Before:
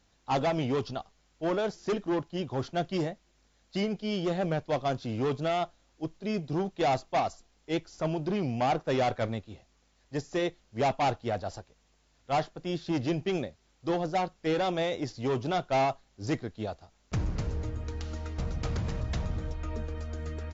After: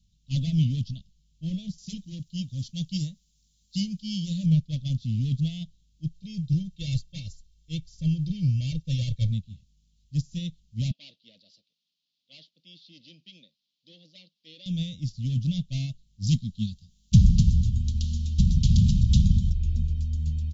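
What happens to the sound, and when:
1.78–4.46 tone controls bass -5 dB, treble +10 dB
6.14–9.32 comb 2.2 ms
10.91–14.66 Chebyshev band-pass 370–4600 Hz, order 3
16.22–19.5 EQ curve 140 Hz 0 dB, 230 Hz +7 dB, 610 Hz -27 dB, 1600 Hz -9 dB, 3200 Hz +7 dB
whole clip: elliptic band-stop 180–3200 Hz, stop band 40 dB; resonant low shelf 770 Hz +8.5 dB, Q 3; upward expander 1.5:1, over -40 dBFS; gain +7.5 dB

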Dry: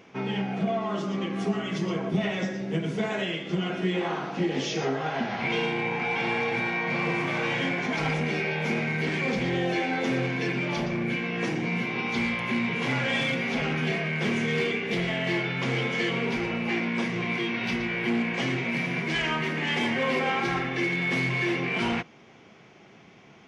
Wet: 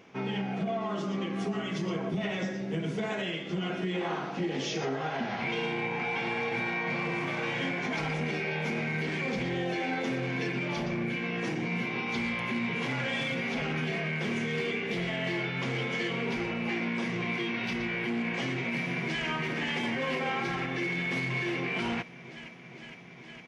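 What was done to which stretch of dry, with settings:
18.56–19.26 echo throw 0.46 s, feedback 85%, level -8.5 dB
whole clip: limiter -20.5 dBFS; gain -2.5 dB

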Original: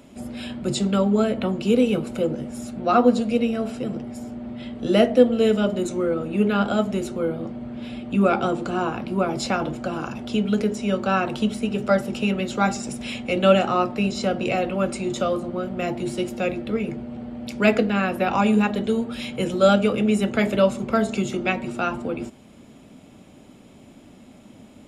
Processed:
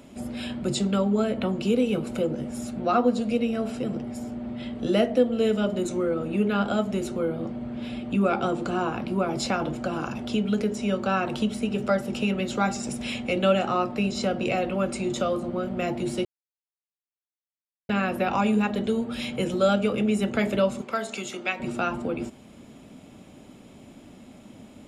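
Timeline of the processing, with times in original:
16.25–17.89 mute
20.81–21.6 HPF 1000 Hz 6 dB/oct
whole clip: compressor 1.5:1, threshold -26 dBFS

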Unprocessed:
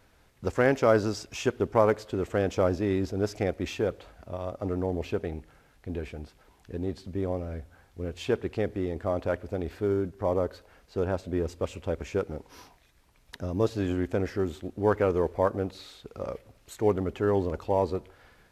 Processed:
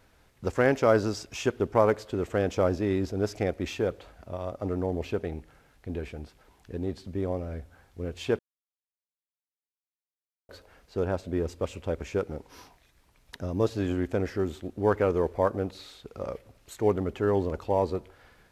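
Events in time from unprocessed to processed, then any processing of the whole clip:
8.39–10.49 mute

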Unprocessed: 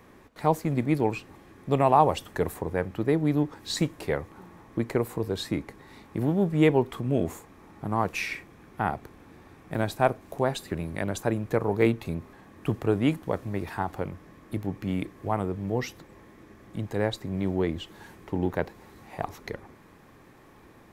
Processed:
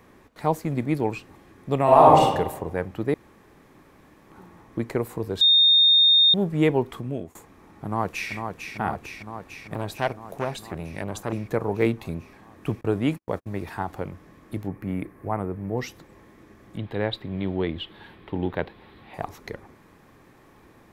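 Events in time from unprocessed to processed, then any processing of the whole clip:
1.84–2.24 reverb throw, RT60 0.99 s, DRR -6.5 dB
3.14–4.3 room tone
5.41–6.34 bleep 3670 Hz -13 dBFS
6.95–7.35 fade out, to -23.5 dB
7.85–8.32 echo throw 0.45 s, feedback 75%, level -6 dB
9.74–11.33 core saturation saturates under 1400 Hz
12.81–13.59 gate -36 dBFS, range -47 dB
14.68–15.78 band shelf 4700 Hz -11.5 dB
16.77–19.14 resonant high shelf 4800 Hz -11 dB, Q 3

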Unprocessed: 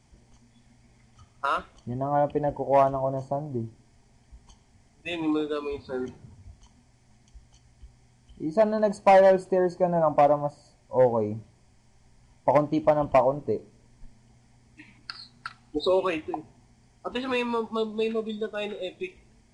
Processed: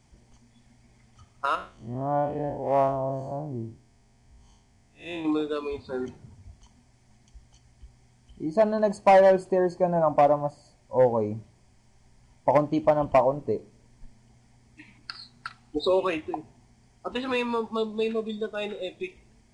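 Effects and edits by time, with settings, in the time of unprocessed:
1.55–5.25 time blur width 0.125 s

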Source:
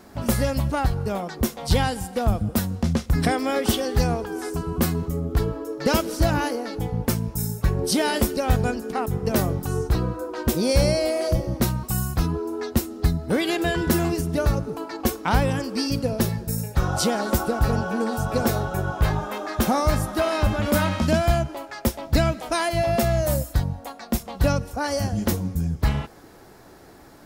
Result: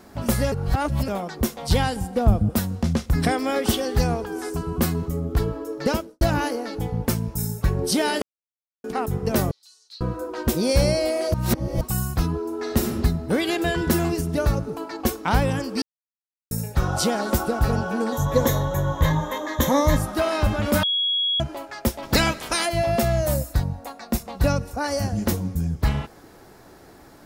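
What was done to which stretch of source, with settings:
0.52–1.08 reverse
1.96–2.5 tilt shelf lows +4.5 dB, about 920 Hz
5.8–6.21 studio fade out
8.22–8.84 mute
9.51–10.01 ladder band-pass 4500 Hz, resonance 75%
11.34–11.81 reverse
12.56–12.98 reverb throw, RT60 1.3 s, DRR 0 dB
15.82–16.51 mute
18.12–19.97 ripple EQ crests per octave 1.1, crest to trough 14 dB
20.83–21.4 bleep 3330 Hz -19.5 dBFS
22.02–22.65 spectral limiter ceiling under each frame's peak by 17 dB
23.34–25.29 notch 3200 Hz, Q 11

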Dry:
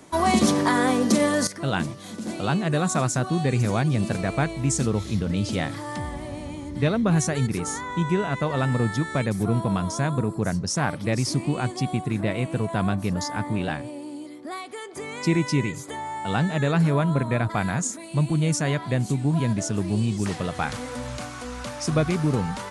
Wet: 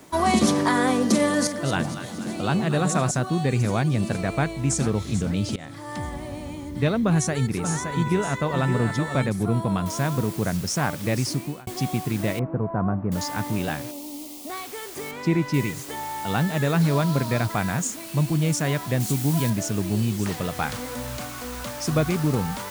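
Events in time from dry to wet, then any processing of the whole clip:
1.18–3.11 echo with dull and thin repeats by turns 0.118 s, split 850 Hz, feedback 73%, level -8 dB
4.26–4.85 echo throw 0.44 s, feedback 40%, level -13 dB
5.56–6 fade in, from -20 dB
7.07–9.29 echo 0.569 s -7 dB
9.86 noise floor step -60 dB -41 dB
11.12–11.67 fade out equal-power
12.39–13.12 LPF 1300 Hz 24 dB/oct
13.91–14.5 fixed phaser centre 420 Hz, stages 6
15.11–15.54 LPF 2300 Hz 6 dB/oct
16.81–17.47 bell 4400 Hz +7 dB 0.6 oct
19–19.5 high shelf 4100 Hz +8.5 dB

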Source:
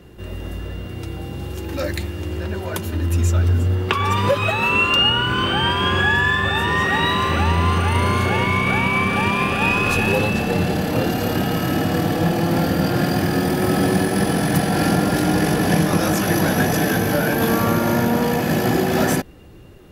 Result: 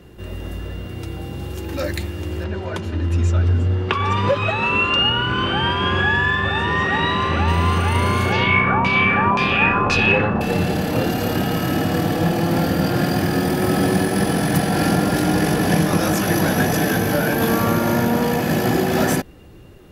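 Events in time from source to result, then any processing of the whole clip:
2.44–7.48 air absorption 96 m
8.32–10.41 LFO low-pass saw down 1.9 Hz 870–5600 Hz

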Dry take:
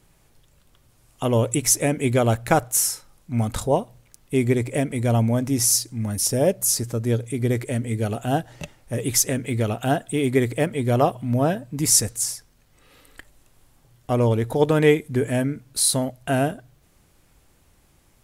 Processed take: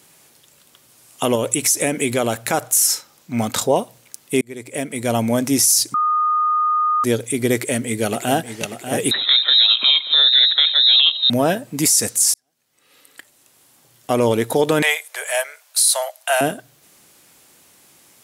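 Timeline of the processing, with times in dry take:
1.35–2.37 compressor, threshold -20 dBFS
2.87–3.76 bell 10000 Hz -8.5 dB 0.49 oct
4.41–5.38 fade in
5.94–7.04 bleep 1230 Hz -22.5 dBFS
7.54–8.55 echo throw 0.59 s, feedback 60%, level -10 dB
9.11–11.3 inverted band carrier 3900 Hz
12.34–14.19 fade in
14.82–16.41 steep high-pass 590 Hz 48 dB/oct
whole clip: HPF 210 Hz 12 dB/oct; high shelf 2400 Hz +8.5 dB; limiter -11.5 dBFS; gain +6 dB

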